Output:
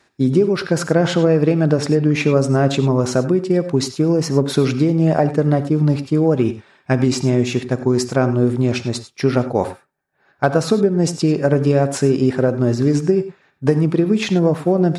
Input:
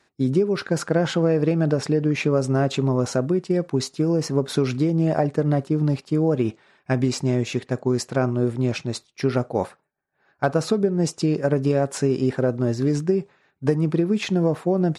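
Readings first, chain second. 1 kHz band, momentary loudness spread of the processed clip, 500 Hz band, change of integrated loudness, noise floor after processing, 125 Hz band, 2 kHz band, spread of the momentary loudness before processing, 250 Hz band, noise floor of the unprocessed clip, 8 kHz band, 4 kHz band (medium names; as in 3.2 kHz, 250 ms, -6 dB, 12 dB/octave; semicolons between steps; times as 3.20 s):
+5.5 dB, 5 LU, +5.0 dB, +5.0 dB, -60 dBFS, +5.0 dB, +5.5 dB, 5 LU, +5.5 dB, -67 dBFS, +5.0 dB, +5.5 dB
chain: gated-style reverb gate 120 ms rising, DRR 11.5 dB; trim +5 dB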